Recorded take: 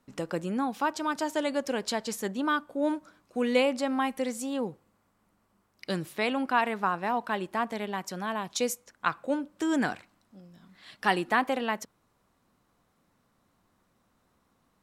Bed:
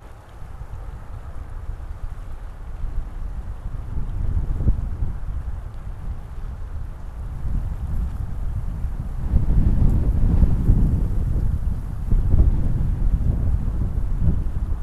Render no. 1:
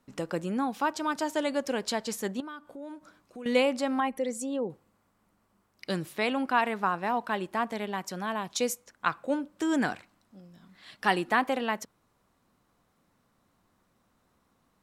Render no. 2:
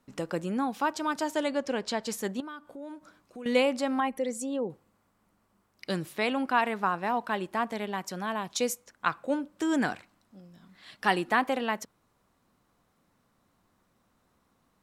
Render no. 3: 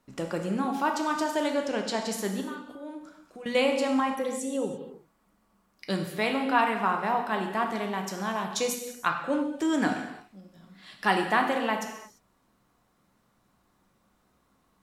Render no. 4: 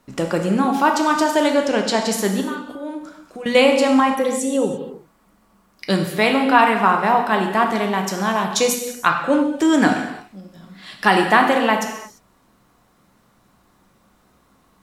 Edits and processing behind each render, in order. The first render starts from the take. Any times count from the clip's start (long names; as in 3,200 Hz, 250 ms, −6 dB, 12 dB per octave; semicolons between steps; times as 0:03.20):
0:02.40–0:03.46: downward compressor 3 to 1, threshold −43 dBFS; 0:04.00–0:04.70: spectral envelope exaggerated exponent 1.5
0:01.48–0:02.03: high-frequency loss of the air 56 metres
reverb whose tail is shaped and stops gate 370 ms falling, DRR 2.5 dB
level +10.5 dB; brickwall limiter −1 dBFS, peak gain reduction 3 dB